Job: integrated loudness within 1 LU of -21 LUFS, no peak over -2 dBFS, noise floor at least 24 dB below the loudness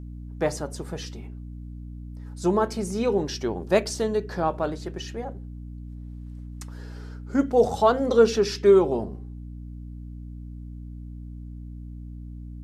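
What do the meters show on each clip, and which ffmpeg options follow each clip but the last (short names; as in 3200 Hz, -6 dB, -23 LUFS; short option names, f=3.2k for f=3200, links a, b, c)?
hum 60 Hz; harmonics up to 300 Hz; hum level -35 dBFS; loudness -24.0 LUFS; peak -6.0 dBFS; loudness target -21.0 LUFS
-> -af "bandreject=f=60:t=h:w=6,bandreject=f=120:t=h:w=6,bandreject=f=180:t=h:w=6,bandreject=f=240:t=h:w=6,bandreject=f=300:t=h:w=6"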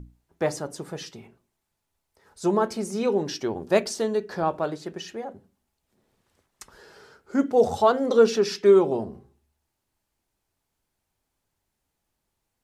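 hum none; loudness -23.5 LUFS; peak -6.5 dBFS; loudness target -21.0 LUFS
-> -af "volume=2.5dB"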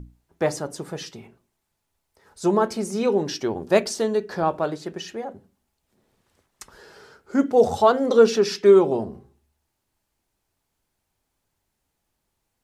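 loudness -21.0 LUFS; peak -4.0 dBFS; noise floor -78 dBFS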